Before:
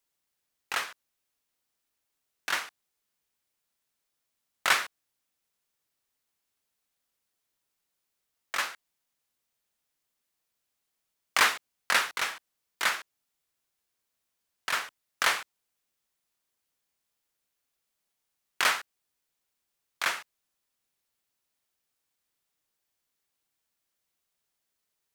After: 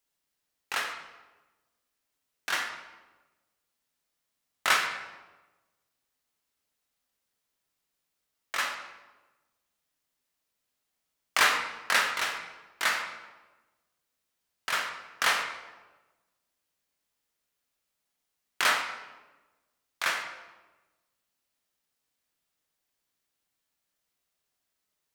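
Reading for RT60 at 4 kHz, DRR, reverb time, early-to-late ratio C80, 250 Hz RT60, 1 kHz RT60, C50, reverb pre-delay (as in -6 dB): 0.80 s, 2.5 dB, 1.2 s, 8.0 dB, 1.4 s, 1.1 s, 6.0 dB, 8 ms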